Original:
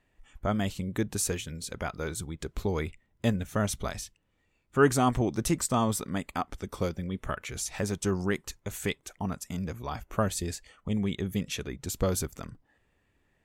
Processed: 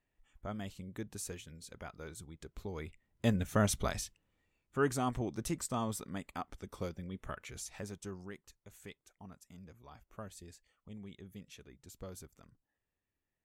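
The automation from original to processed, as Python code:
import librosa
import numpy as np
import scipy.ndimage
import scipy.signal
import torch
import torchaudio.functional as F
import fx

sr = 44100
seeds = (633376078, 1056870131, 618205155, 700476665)

y = fx.gain(x, sr, db=fx.line((2.72, -13.0), (3.43, -1.0), (3.98, -1.0), (4.84, -9.5), (7.55, -9.5), (8.38, -19.5)))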